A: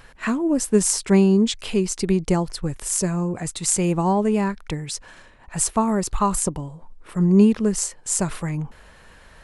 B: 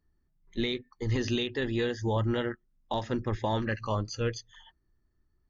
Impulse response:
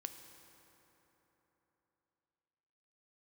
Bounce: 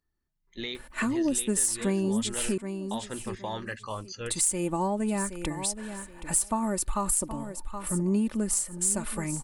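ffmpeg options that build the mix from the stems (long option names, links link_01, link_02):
-filter_complex "[0:a]aecho=1:1:3.4:0.51,aexciter=amount=3:drive=7.1:freq=8100,adelay=750,volume=-2.5dB,asplit=3[link_01][link_02][link_03];[link_01]atrim=end=2.58,asetpts=PTS-STARTPTS,afade=type=out:start_time=2.576:duration=0.004:curve=hsin[link_04];[link_02]atrim=start=2.58:end=4.26,asetpts=PTS-STARTPTS,volume=0[link_05];[link_03]atrim=start=4.26,asetpts=PTS-STARTPTS,afade=type=in:duration=0.004:curve=hsin[link_06];[link_04][link_05][link_06]concat=n=3:v=0:a=1,asplit=2[link_07][link_08];[link_08]volume=-15dB[link_09];[1:a]lowshelf=frequency=460:gain=-9,volume=-1.5dB[link_10];[link_09]aecho=0:1:772|1544|2316|3088:1|0.22|0.0484|0.0106[link_11];[link_07][link_10][link_11]amix=inputs=3:normalize=0,acompressor=threshold=-27dB:ratio=2.5"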